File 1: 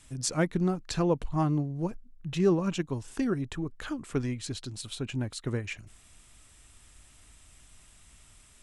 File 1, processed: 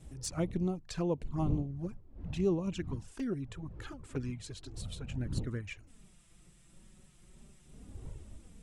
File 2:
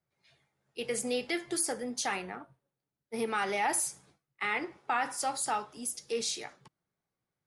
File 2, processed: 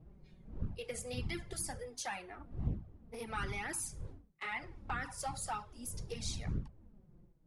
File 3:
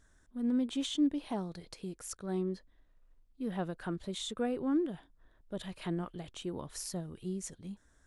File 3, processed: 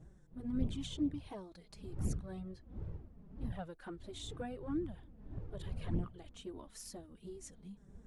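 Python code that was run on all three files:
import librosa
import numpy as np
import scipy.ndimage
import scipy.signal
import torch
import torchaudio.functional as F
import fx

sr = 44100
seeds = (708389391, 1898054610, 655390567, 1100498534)

y = fx.dmg_wind(x, sr, seeds[0], corner_hz=140.0, level_db=-38.0)
y = fx.env_flanger(y, sr, rest_ms=7.0, full_db=-23.0)
y = y * librosa.db_to_amplitude(-5.5)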